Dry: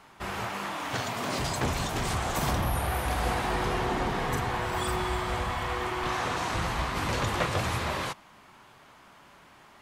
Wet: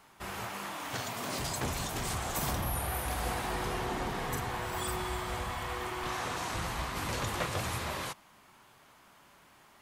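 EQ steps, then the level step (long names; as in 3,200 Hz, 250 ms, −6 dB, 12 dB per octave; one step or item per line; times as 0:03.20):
high-shelf EQ 7,900 Hz +11.5 dB
−6.0 dB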